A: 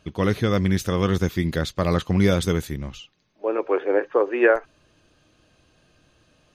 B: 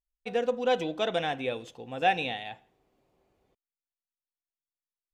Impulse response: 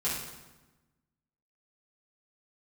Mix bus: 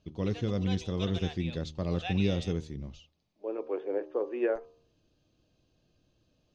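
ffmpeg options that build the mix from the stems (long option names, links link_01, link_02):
-filter_complex "[0:a]bandreject=frequency=76.78:width_type=h:width=4,bandreject=frequency=153.56:width_type=h:width=4,bandreject=frequency=230.34:width_type=h:width=4,bandreject=frequency=307.12:width_type=h:width=4,bandreject=frequency=383.9:width_type=h:width=4,bandreject=frequency=460.68:width_type=h:width=4,bandreject=frequency=537.46:width_type=h:width=4,bandreject=frequency=614.24:width_type=h:width=4,bandreject=frequency=691.02:width_type=h:width=4,bandreject=frequency=767.8:width_type=h:width=4,bandreject=frequency=844.58:width_type=h:width=4,bandreject=frequency=921.36:width_type=h:width=4,bandreject=frequency=998.14:width_type=h:width=4,bandreject=frequency=1074.92:width_type=h:width=4,bandreject=frequency=1151.7:width_type=h:width=4,bandreject=frequency=1228.48:width_type=h:width=4,bandreject=frequency=1305.26:width_type=h:width=4,volume=-8dB[link_01];[1:a]highpass=1400,volume=0.5dB[link_02];[link_01][link_02]amix=inputs=2:normalize=0,lowpass=frequency=5900:width=0.5412,lowpass=frequency=5900:width=1.3066,equalizer=frequency=1600:width=0.68:gain=-13"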